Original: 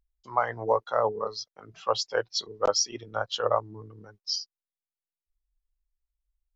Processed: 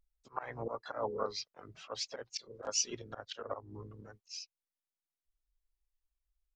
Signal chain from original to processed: vibrato 0.49 Hz 76 cents; auto swell 0.221 s; harmoniser -12 st -16 dB, -4 st -17 dB, +3 st -10 dB; gain -4.5 dB

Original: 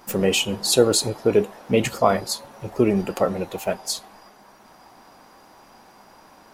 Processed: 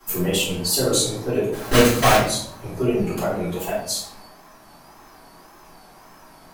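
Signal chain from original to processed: high shelf 8800 Hz +10.5 dB; in parallel at 0 dB: compressor, threshold -25 dBFS, peak gain reduction 14.5 dB; 1.52–2.19 on the sum: companded quantiser 2-bit; wow and flutter 140 cents; shoebox room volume 94 m³, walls mixed, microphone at 3.9 m; gain -18 dB

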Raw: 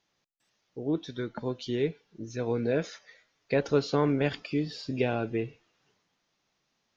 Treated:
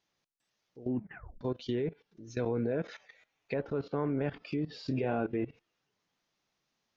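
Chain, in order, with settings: 4.78–5.45 doubler 30 ms -7.5 dB; treble ducked by the level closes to 1700 Hz, closed at -25.5 dBFS; level quantiser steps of 17 dB; 0.82 tape stop 0.59 s; 2.93–3.53 thirty-one-band EQ 800 Hz +7 dB, 2500 Hz +7 dB, 5000 Hz -7 dB; gain +3 dB

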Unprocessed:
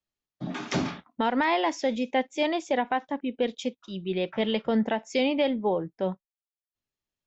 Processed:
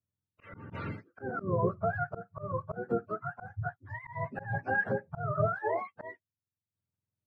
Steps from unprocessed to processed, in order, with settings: spectrum mirrored in octaves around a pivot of 600 Hz; auto swell 0.208 s; high shelf 3800 Hz -7 dB; gain -2 dB

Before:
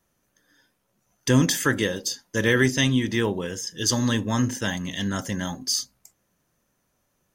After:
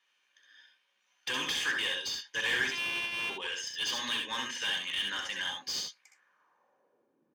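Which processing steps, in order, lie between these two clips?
2.71–3.3 sample sorter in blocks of 128 samples; dynamic EQ 1900 Hz, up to -4 dB, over -38 dBFS, Q 3.4; band-pass sweep 2900 Hz -> 290 Hz, 5.89–7.18; in parallel at -10 dB: Schmitt trigger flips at -32 dBFS; on the sum: overdrive pedal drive 25 dB, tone 2800 Hz, clips at -15 dBFS; notch comb 670 Hz; on a send: early reflections 65 ms -5 dB, 78 ms -9 dB; on the sum: gain -5 dB

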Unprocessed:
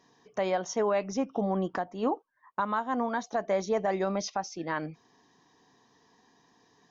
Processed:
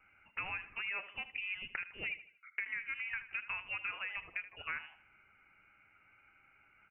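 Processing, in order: gate with hold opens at -59 dBFS; HPF 1000 Hz 12 dB/oct; compressor 6:1, threshold -40 dBFS, peak gain reduction 12.5 dB; feedback echo 78 ms, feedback 38%, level -14 dB; inverted band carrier 3200 Hz; gain +3.5 dB

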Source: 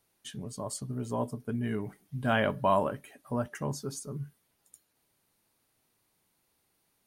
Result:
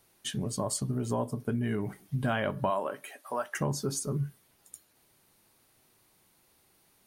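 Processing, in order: 2.69–3.54 HPF 280 Hz -> 890 Hz 12 dB/oct; compressor 5:1, threshold -35 dBFS, peak gain reduction 13 dB; reverb RT60 0.30 s, pre-delay 3 ms, DRR 16.5 dB; gain +8 dB

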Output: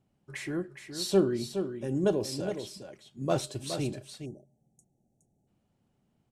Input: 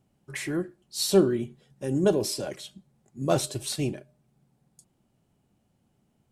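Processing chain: on a send: echo 0.417 s -8.5 dB; on the sum: spectral delete 4.25–5.47, 870–5500 Hz; high shelf 9700 Hz -11 dB; gain -4 dB

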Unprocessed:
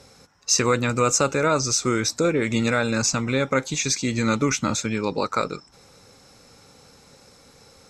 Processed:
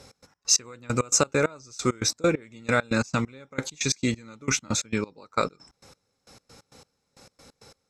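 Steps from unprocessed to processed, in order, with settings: step gate "x.x.x..." 134 bpm -24 dB

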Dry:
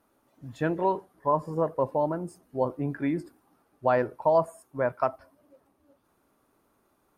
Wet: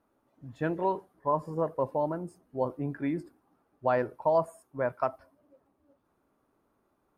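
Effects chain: mismatched tape noise reduction decoder only; gain -3 dB

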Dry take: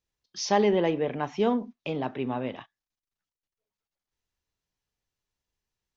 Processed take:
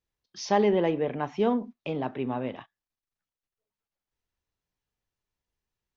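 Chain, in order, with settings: high shelf 3700 Hz -7.5 dB

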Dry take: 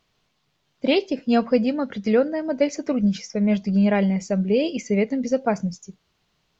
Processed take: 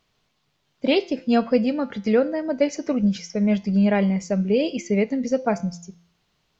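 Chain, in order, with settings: de-hum 171.9 Hz, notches 38

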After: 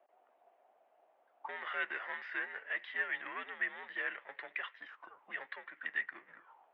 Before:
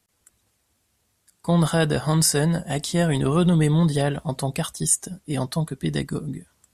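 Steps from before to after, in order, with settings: power-law curve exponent 0.7; mistuned SSB -98 Hz 400–3200 Hz; auto-wah 660–1900 Hz, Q 6.8, up, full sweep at -30 dBFS; gain +1 dB

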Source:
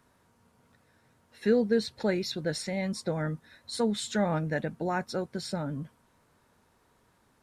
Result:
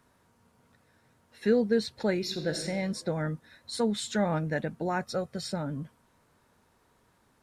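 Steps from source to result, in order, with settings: 2.18–2.66 reverb throw, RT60 1.4 s, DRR 6 dB; 5.02–5.48 comb 1.6 ms, depth 53%

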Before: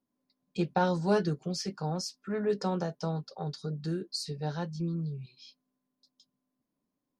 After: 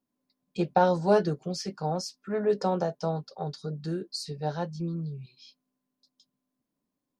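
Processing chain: dynamic EQ 640 Hz, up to +8 dB, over -43 dBFS, Q 1.1

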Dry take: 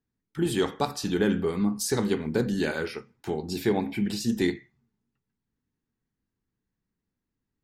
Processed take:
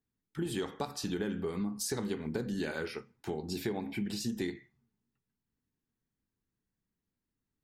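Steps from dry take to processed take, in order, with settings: compressor, threshold -27 dBFS, peak gain reduction 8 dB; gain -4 dB

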